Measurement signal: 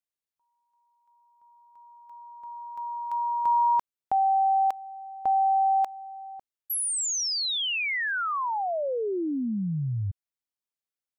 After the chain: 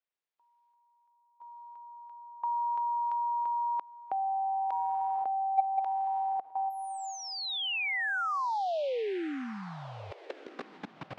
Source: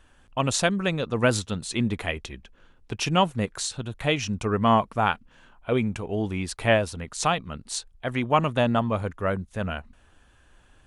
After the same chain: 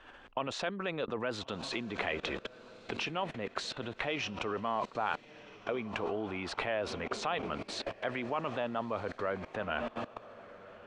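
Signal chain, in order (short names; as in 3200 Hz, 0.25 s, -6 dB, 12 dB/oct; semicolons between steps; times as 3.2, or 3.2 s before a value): limiter -18 dBFS; on a send: diffused feedback echo 1.31 s, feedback 41%, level -16 dB; on the sum: level quantiser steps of 21 dB; air absorption 100 m; in parallel at +0.5 dB: compressor, threshold -51 dBFS; on the sum: three-band isolator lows -16 dB, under 290 Hz, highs -13 dB, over 4600 Hz; gain +9 dB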